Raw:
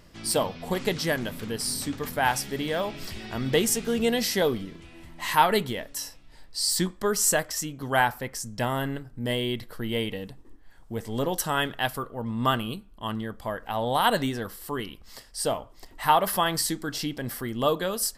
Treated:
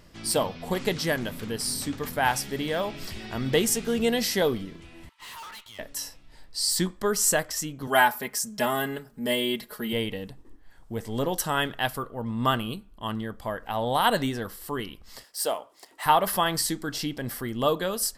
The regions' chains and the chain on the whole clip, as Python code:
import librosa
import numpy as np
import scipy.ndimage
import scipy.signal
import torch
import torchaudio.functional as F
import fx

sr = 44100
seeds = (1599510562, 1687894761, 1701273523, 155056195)

y = fx.chain(x, sr, fx.cheby_ripple_highpass(hz=870.0, ripple_db=6),
    fx.tube_stage(drive_db=40.0, bias=0.7), at=(5.09, 5.79))
y = fx.chain(y, sr, fx.highpass(hz=230.0, slope=6),
    fx.high_shelf(hz=10000.0, db=9.5),
    fx.comb(ms=4.8, depth=0.9), at=(7.87, 9.93))
y = fx.chain(y, sr, fx.highpass(hz=390.0, slope=12),
    fx.high_shelf(hz=9900.0, db=9.0),
    fx.resample_linear(factor=2), at=(15.24, 16.06))